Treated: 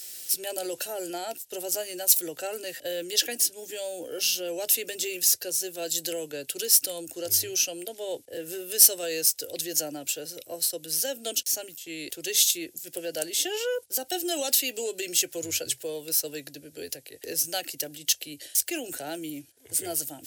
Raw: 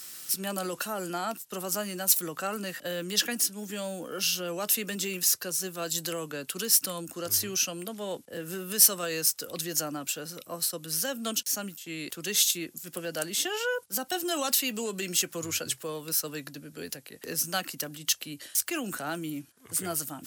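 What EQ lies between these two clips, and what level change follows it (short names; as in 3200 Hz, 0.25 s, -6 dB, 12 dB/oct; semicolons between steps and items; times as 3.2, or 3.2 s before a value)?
fixed phaser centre 480 Hz, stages 4; +3.0 dB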